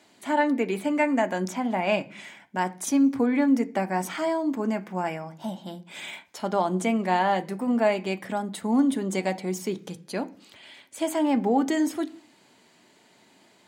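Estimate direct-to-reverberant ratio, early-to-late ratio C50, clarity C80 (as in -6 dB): 7.5 dB, 19.5 dB, 24.0 dB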